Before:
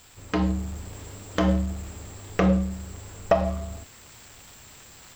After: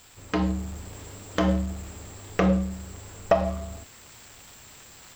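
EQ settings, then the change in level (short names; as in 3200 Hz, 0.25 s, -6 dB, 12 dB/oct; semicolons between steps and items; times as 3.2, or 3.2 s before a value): low shelf 150 Hz -3 dB; 0.0 dB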